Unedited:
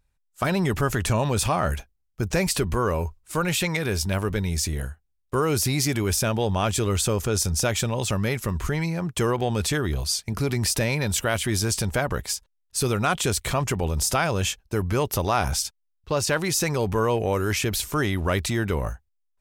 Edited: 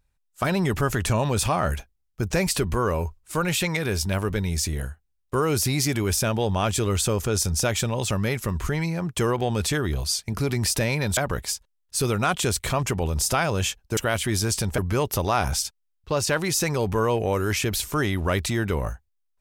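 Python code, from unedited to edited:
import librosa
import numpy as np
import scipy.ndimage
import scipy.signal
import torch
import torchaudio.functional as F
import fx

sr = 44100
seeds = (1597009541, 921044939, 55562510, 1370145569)

y = fx.edit(x, sr, fx.move(start_s=11.17, length_s=0.81, to_s=14.78), tone=tone)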